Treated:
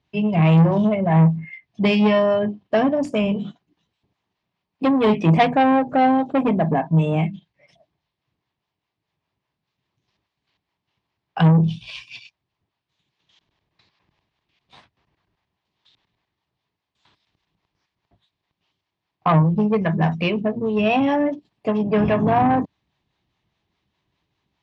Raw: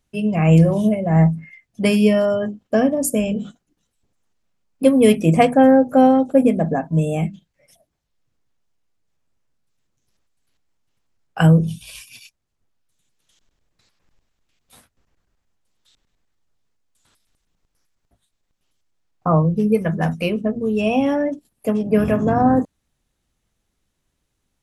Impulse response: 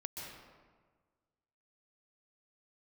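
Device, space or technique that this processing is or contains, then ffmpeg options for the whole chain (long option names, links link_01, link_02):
guitar amplifier with harmonic tremolo: -filter_complex "[0:a]acrossover=split=490[link_01][link_02];[link_01]aeval=exprs='val(0)*(1-0.5/2+0.5/2*cos(2*PI*4.9*n/s))':channel_layout=same[link_03];[link_02]aeval=exprs='val(0)*(1-0.5/2-0.5/2*cos(2*PI*4.9*n/s))':channel_layout=same[link_04];[link_03][link_04]amix=inputs=2:normalize=0,asoftclip=type=tanh:threshold=-15.5dB,highpass=100,equalizer=frequency=240:width_type=q:width=4:gain=-7,equalizer=frequency=510:width_type=q:width=4:gain=-8,equalizer=frequency=990:width_type=q:width=4:gain=4,equalizer=frequency=1400:width_type=q:width=4:gain=-7,lowpass=frequency=4300:width=0.5412,lowpass=frequency=4300:width=1.3066,volume=7dB"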